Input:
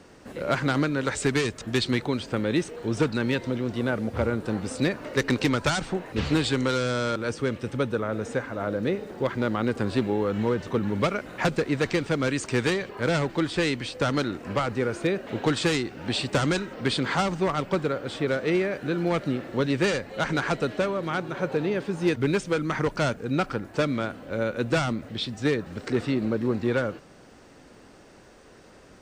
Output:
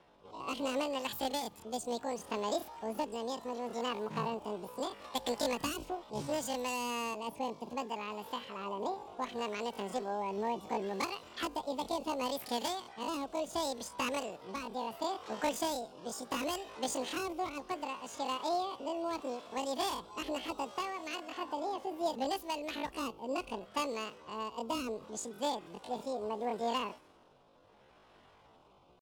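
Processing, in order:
low-pass that shuts in the quiet parts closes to 2,000 Hz, open at −22.5 dBFS
rotating-speaker cabinet horn 0.7 Hz
pitch shifter +11.5 semitones
level −9 dB

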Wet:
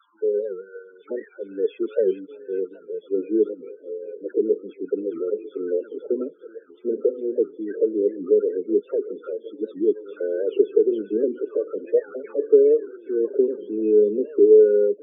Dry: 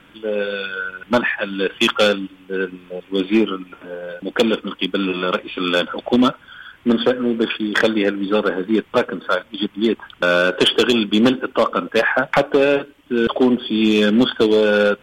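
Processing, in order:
every frequency bin delayed by itself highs early, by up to 318 ms
envelope filter 430–1,300 Hz, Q 7.1, down, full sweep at −29 dBFS
spectral peaks only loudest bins 16
phaser with its sweep stopped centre 300 Hz, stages 4
on a send: echo through a band-pass that steps 411 ms, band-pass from 2,800 Hz, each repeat −0.7 octaves, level −7.5 dB
on the sum: wow of a warped record 78 rpm, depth 160 cents
level +6.5 dB

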